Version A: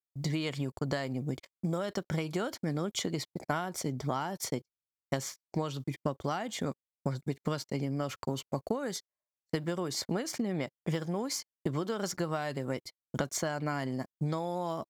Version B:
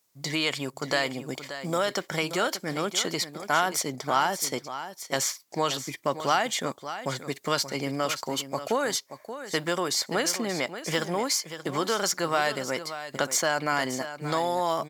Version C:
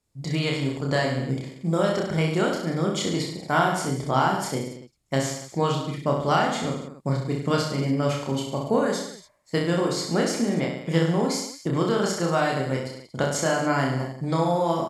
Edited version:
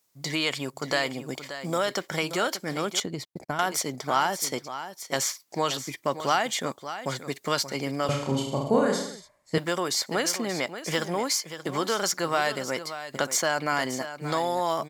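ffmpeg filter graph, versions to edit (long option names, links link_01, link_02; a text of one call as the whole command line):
ffmpeg -i take0.wav -i take1.wav -i take2.wav -filter_complex "[1:a]asplit=3[link_01][link_02][link_03];[link_01]atrim=end=3.002[link_04];[0:a]atrim=start=2.998:end=3.592[link_05];[link_02]atrim=start=3.588:end=8.092[link_06];[2:a]atrim=start=8.088:end=9.582[link_07];[link_03]atrim=start=9.578[link_08];[link_04][link_05]acrossfade=duration=0.004:curve1=hsin:curve2=hsin[link_09];[link_09][link_06]acrossfade=duration=0.004:curve1=hsin:curve2=hsin[link_10];[link_10][link_07]acrossfade=duration=0.004:curve1=hsin:curve2=hsin[link_11];[link_11][link_08]acrossfade=duration=0.004:curve1=hsin:curve2=hsin" out.wav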